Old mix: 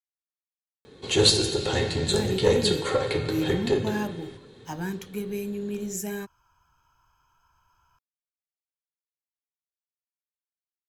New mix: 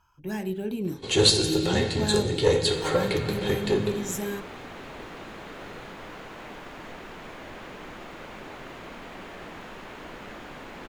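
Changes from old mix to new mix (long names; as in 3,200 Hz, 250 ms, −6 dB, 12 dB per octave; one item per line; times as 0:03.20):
speech: entry −1.85 s
second sound: unmuted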